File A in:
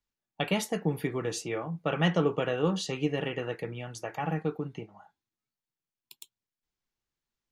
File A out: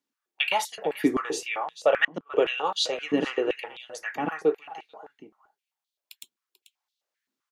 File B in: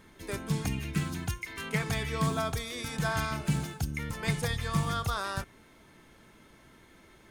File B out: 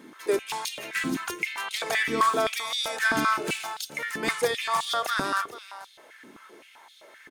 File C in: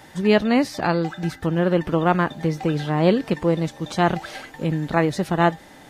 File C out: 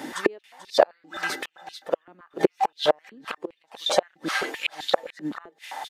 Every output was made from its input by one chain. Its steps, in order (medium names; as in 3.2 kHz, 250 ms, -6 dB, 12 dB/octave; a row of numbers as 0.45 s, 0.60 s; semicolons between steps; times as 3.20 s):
inverted gate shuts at -13 dBFS, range -41 dB; delay 439 ms -15 dB; step-sequenced high-pass 7.7 Hz 270–3700 Hz; normalise loudness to -27 LUFS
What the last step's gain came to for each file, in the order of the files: +2.0 dB, +4.5 dB, +6.5 dB